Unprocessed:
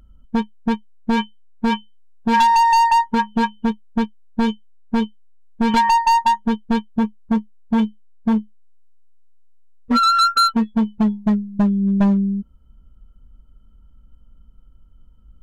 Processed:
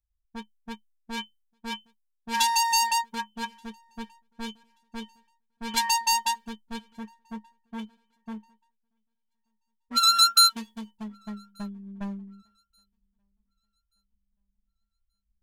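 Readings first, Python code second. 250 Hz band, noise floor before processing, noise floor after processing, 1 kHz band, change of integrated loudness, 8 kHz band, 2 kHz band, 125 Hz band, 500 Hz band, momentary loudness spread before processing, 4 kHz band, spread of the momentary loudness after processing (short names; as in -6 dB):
-20.5 dB, -50 dBFS, -79 dBFS, -11.5 dB, -4.0 dB, +8.0 dB, -7.0 dB, under -20 dB, -18.5 dB, 11 LU, +2.5 dB, 24 LU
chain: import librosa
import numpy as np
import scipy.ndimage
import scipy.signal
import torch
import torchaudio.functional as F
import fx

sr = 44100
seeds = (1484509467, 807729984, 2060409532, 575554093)

y = librosa.effects.preemphasis(x, coef=0.9, zi=[0.0])
y = fx.echo_feedback(y, sr, ms=1181, feedback_pct=56, wet_db=-23)
y = fx.band_widen(y, sr, depth_pct=100)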